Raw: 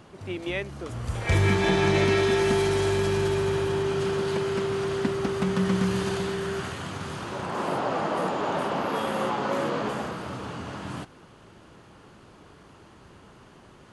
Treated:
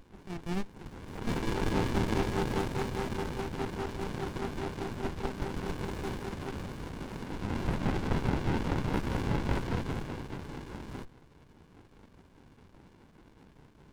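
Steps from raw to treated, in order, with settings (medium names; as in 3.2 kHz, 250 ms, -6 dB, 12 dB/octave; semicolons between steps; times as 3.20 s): LFO high-pass sine 4.9 Hz 570–1600 Hz; sliding maximum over 65 samples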